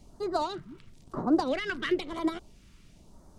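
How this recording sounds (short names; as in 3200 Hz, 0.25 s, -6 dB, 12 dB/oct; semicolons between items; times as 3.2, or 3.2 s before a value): phasing stages 2, 1 Hz, lowest notch 680–2500 Hz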